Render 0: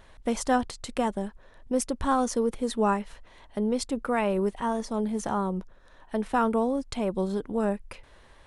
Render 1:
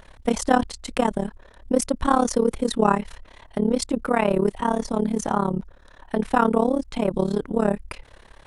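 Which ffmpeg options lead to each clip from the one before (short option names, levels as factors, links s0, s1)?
-af "tremolo=f=35:d=0.919,volume=2.82"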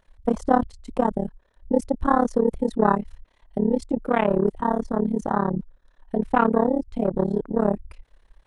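-af "afwtdn=0.0562"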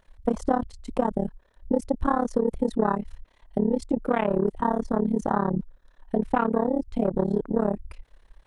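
-af "acompressor=threshold=0.1:ratio=6,volume=1.19"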